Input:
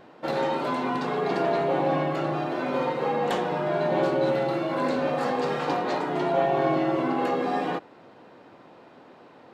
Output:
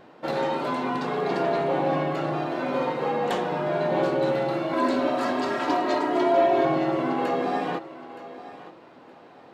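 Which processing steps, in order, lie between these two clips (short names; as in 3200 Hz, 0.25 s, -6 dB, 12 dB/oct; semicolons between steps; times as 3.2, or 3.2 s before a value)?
4.73–6.65 comb 3.1 ms, depth 89%; thinning echo 0.92 s, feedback 25%, high-pass 230 Hz, level -15 dB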